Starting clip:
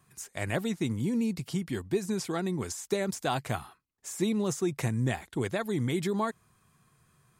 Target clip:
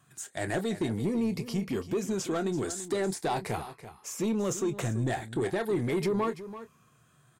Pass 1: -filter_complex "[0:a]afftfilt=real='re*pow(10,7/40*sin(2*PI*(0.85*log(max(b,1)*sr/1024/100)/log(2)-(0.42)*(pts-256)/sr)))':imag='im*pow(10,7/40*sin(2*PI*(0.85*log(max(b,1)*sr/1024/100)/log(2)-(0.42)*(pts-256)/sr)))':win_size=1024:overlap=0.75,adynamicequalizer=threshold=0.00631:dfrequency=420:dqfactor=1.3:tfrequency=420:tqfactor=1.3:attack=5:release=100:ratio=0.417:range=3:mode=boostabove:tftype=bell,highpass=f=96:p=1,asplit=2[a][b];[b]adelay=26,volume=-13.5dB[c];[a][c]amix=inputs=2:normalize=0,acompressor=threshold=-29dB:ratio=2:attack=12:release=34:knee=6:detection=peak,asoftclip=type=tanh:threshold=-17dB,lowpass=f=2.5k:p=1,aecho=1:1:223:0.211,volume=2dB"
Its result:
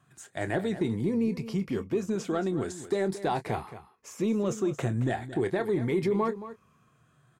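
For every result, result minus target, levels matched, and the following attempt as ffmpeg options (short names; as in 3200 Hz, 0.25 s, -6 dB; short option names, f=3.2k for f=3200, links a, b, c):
8000 Hz band -8.5 dB; soft clip: distortion -11 dB; echo 0.112 s early
-filter_complex "[0:a]afftfilt=real='re*pow(10,7/40*sin(2*PI*(0.85*log(max(b,1)*sr/1024/100)/log(2)-(0.42)*(pts-256)/sr)))':imag='im*pow(10,7/40*sin(2*PI*(0.85*log(max(b,1)*sr/1024/100)/log(2)-(0.42)*(pts-256)/sr)))':win_size=1024:overlap=0.75,adynamicequalizer=threshold=0.00631:dfrequency=420:dqfactor=1.3:tfrequency=420:tqfactor=1.3:attack=5:release=100:ratio=0.417:range=3:mode=boostabove:tftype=bell,highpass=f=96:p=1,asplit=2[a][b];[b]adelay=26,volume=-13.5dB[c];[a][c]amix=inputs=2:normalize=0,acompressor=threshold=-29dB:ratio=2:attack=12:release=34:knee=6:detection=peak,asoftclip=type=tanh:threshold=-17dB,lowpass=f=9.8k:p=1,aecho=1:1:223:0.211,volume=2dB"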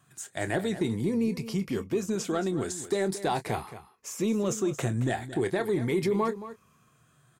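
soft clip: distortion -11 dB; echo 0.112 s early
-filter_complex "[0:a]afftfilt=real='re*pow(10,7/40*sin(2*PI*(0.85*log(max(b,1)*sr/1024/100)/log(2)-(0.42)*(pts-256)/sr)))':imag='im*pow(10,7/40*sin(2*PI*(0.85*log(max(b,1)*sr/1024/100)/log(2)-(0.42)*(pts-256)/sr)))':win_size=1024:overlap=0.75,adynamicequalizer=threshold=0.00631:dfrequency=420:dqfactor=1.3:tfrequency=420:tqfactor=1.3:attack=5:release=100:ratio=0.417:range=3:mode=boostabove:tftype=bell,highpass=f=96:p=1,asplit=2[a][b];[b]adelay=26,volume=-13.5dB[c];[a][c]amix=inputs=2:normalize=0,acompressor=threshold=-29dB:ratio=2:attack=12:release=34:knee=6:detection=peak,asoftclip=type=tanh:threshold=-24.5dB,lowpass=f=9.8k:p=1,aecho=1:1:223:0.211,volume=2dB"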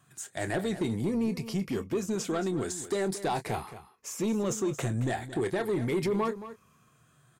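echo 0.112 s early
-filter_complex "[0:a]afftfilt=real='re*pow(10,7/40*sin(2*PI*(0.85*log(max(b,1)*sr/1024/100)/log(2)-(0.42)*(pts-256)/sr)))':imag='im*pow(10,7/40*sin(2*PI*(0.85*log(max(b,1)*sr/1024/100)/log(2)-(0.42)*(pts-256)/sr)))':win_size=1024:overlap=0.75,adynamicequalizer=threshold=0.00631:dfrequency=420:dqfactor=1.3:tfrequency=420:tqfactor=1.3:attack=5:release=100:ratio=0.417:range=3:mode=boostabove:tftype=bell,highpass=f=96:p=1,asplit=2[a][b];[b]adelay=26,volume=-13.5dB[c];[a][c]amix=inputs=2:normalize=0,acompressor=threshold=-29dB:ratio=2:attack=12:release=34:knee=6:detection=peak,asoftclip=type=tanh:threshold=-24.5dB,lowpass=f=9.8k:p=1,aecho=1:1:335:0.211,volume=2dB"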